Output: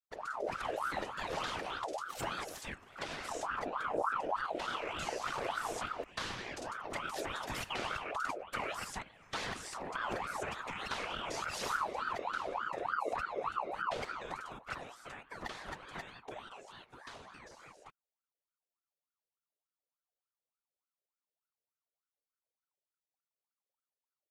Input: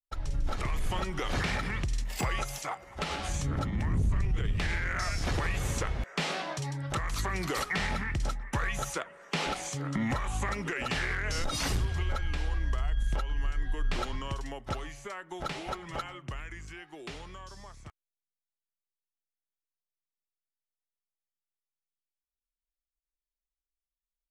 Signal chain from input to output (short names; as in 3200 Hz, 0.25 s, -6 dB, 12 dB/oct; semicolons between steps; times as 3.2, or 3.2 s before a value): whisperiser; ring modulator with a swept carrier 950 Hz, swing 50%, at 3.4 Hz; gain -5 dB